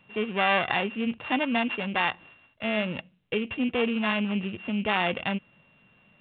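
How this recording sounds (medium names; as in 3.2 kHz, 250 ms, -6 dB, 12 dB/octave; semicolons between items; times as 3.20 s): a buzz of ramps at a fixed pitch in blocks of 16 samples; µ-law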